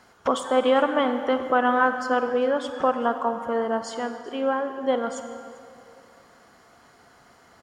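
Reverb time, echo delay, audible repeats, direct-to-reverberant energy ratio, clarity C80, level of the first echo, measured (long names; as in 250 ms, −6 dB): 2.5 s, 397 ms, 1, 8.0 dB, 9.0 dB, −22.0 dB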